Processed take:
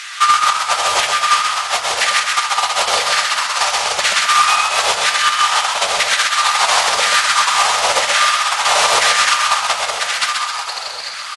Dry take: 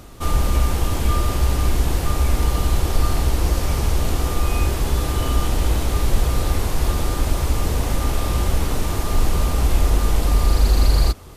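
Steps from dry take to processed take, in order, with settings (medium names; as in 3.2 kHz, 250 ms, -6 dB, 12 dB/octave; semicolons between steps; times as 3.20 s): high-pass 58 Hz 24 dB/octave; amplifier tone stack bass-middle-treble 10-0-10; compressor with a negative ratio -33 dBFS, ratio -0.5; LFO high-pass saw down 1 Hz 470–1900 Hz; saturation -20.5 dBFS, distortion -24 dB; distance through air 74 m; frequency-shifting echo 130 ms, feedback 55%, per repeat +38 Hz, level -4 dB; reverberation RT60 0.60 s, pre-delay 5 ms, DRR 9.5 dB; loudness maximiser +21.5 dB; trim -1.5 dB; AC-3 64 kbps 44.1 kHz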